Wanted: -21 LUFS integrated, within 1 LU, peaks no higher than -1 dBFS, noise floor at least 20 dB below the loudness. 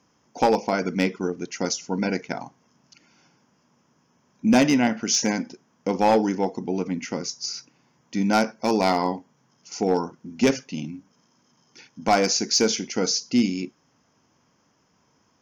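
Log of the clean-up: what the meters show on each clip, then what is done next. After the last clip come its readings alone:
clipped samples 0.3%; clipping level -11.5 dBFS; loudness -24.0 LUFS; peak level -11.5 dBFS; loudness target -21.0 LUFS
-> clip repair -11.5 dBFS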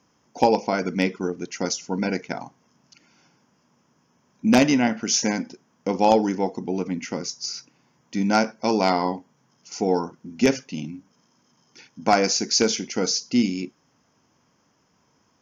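clipped samples 0.0%; loudness -23.5 LUFS; peak level -2.5 dBFS; loudness target -21.0 LUFS
-> trim +2.5 dB; peak limiter -1 dBFS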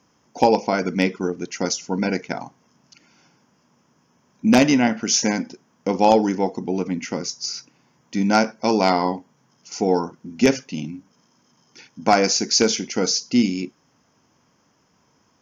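loudness -21.0 LUFS; peak level -1.0 dBFS; noise floor -63 dBFS

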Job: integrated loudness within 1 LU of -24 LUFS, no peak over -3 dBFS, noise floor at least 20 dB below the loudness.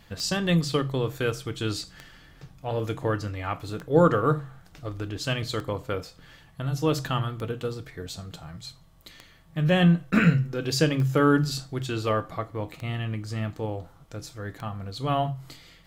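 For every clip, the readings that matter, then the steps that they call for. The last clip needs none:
clicks found 9; loudness -26.5 LUFS; peak level -7.0 dBFS; loudness target -24.0 LUFS
-> de-click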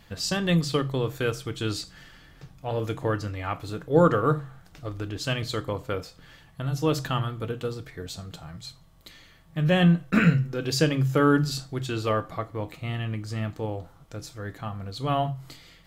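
clicks found 0; loudness -26.5 LUFS; peak level -7.0 dBFS; loudness target -24.0 LUFS
-> trim +2.5 dB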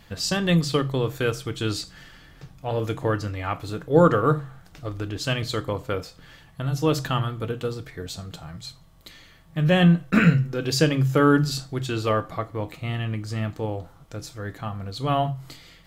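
loudness -24.0 LUFS; peak level -4.5 dBFS; noise floor -52 dBFS

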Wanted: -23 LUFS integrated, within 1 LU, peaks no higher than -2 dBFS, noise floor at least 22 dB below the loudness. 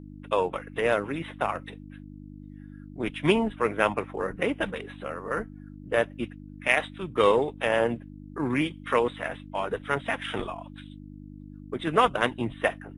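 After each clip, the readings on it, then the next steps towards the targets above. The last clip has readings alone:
hum 50 Hz; highest harmonic 300 Hz; hum level -42 dBFS; loudness -28.0 LUFS; peak level -6.0 dBFS; loudness target -23.0 LUFS
-> de-hum 50 Hz, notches 6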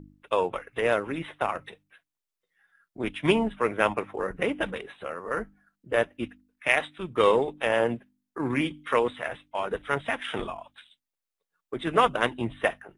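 hum not found; loudness -28.0 LUFS; peak level -6.0 dBFS; loudness target -23.0 LUFS
-> trim +5 dB; peak limiter -2 dBFS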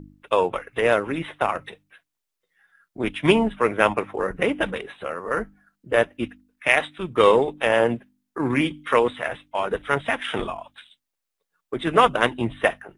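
loudness -23.0 LUFS; peak level -2.0 dBFS; noise floor -83 dBFS

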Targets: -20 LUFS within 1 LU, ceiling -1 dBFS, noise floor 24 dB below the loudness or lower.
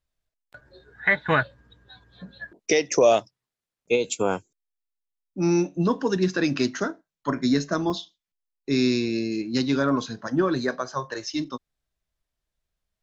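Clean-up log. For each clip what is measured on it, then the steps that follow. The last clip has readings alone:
dropouts 1; longest dropout 2.9 ms; loudness -24.5 LUFS; peak level -7.0 dBFS; loudness target -20.0 LUFS
-> interpolate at 7.90 s, 2.9 ms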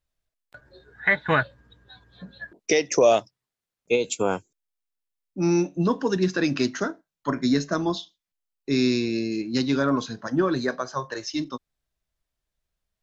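dropouts 0; loudness -24.5 LUFS; peak level -7.0 dBFS; loudness target -20.0 LUFS
-> trim +4.5 dB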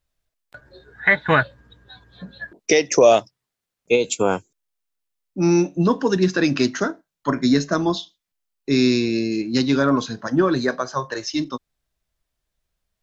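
loudness -20.0 LUFS; peak level -2.5 dBFS; noise floor -83 dBFS

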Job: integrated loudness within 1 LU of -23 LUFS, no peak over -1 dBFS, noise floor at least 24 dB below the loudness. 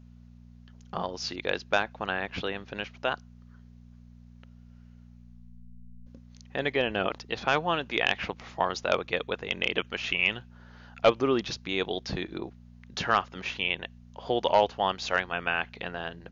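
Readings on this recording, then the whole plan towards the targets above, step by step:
hum 60 Hz; highest harmonic 240 Hz; hum level -49 dBFS; loudness -29.5 LUFS; peak level -10.0 dBFS; loudness target -23.0 LUFS
-> de-hum 60 Hz, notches 4; trim +6.5 dB

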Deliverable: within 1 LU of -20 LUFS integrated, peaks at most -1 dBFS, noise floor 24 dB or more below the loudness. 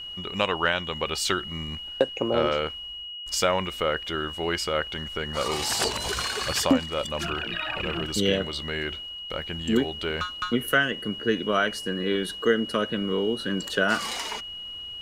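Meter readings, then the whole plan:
steady tone 2.9 kHz; tone level -35 dBFS; loudness -26.5 LUFS; peak level -6.5 dBFS; loudness target -20.0 LUFS
-> band-stop 2.9 kHz, Q 30; trim +6.5 dB; peak limiter -1 dBFS

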